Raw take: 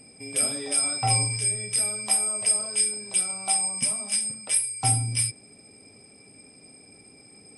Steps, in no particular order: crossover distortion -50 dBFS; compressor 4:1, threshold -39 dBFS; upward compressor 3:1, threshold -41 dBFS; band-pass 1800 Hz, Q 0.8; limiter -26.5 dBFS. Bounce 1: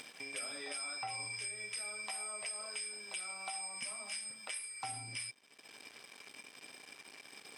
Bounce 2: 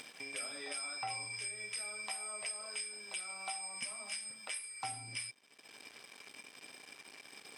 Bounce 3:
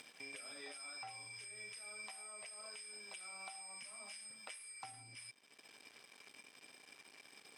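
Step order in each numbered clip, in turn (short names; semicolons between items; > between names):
crossover distortion > band-pass > limiter > upward compressor > compressor; crossover distortion > band-pass > upward compressor > compressor > limiter; limiter > crossover distortion > upward compressor > compressor > band-pass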